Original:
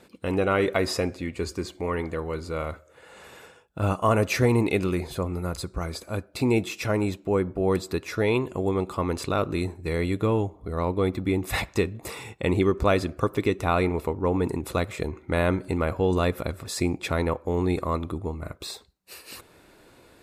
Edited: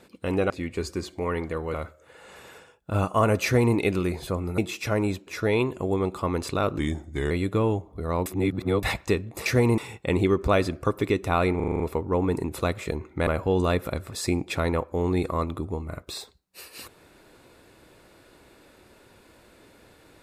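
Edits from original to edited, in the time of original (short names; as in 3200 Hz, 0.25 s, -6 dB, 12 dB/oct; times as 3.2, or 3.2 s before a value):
0.5–1.12 cut
2.36–2.62 cut
4.32–4.64 copy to 12.14
5.46–6.56 cut
7.25–8.02 cut
9.53–9.99 speed 87%
10.94–11.51 reverse
13.92 stutter 0.04 s, 7 plays
15.39–15.8 cut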